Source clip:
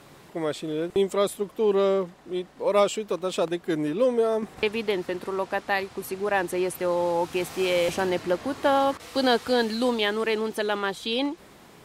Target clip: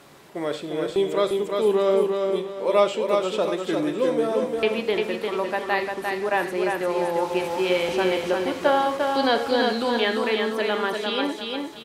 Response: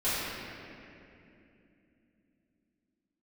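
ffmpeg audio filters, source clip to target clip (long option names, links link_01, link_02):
-filter_complex "[0:a]lowshelf=frequency=160:gain=-8,aecho=1:1:349|698|1047|1396:0.631|0.215|0.0729|0.0248,acrossover=split=4900[link_01][link_02];[link_02]acompressor=threshold=-47dB:ratio=4:attack=1:release=60[link_03];[link_01][link_03]amix=inputs=2:normalize=0,asplit=2[link_04][link_05];[1:a]atrim=start_sample=2205,atrim=end_sample=4410,asetrate=41013,aresample=44100[link_06];[link_05][link_06]afir=irnorm=-1:irlink=0,volume=-15dB[link_07];[link_04][link_07]amix=inputs=2:normalize=0"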